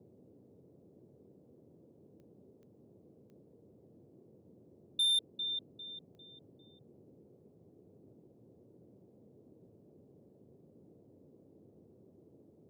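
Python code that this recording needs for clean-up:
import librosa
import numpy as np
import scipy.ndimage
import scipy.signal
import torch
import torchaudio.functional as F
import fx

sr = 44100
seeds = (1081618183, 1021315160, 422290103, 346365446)

y = fx.fix_declip(x, sr, threshold_db=-27.0)
y = fx.fix_declick_ar(y, sr, threshold=10.0)
y = fx.noise_reduce(y, sr, print_start_s=7.26, print_end_s=7.76, reduce_db=30.0)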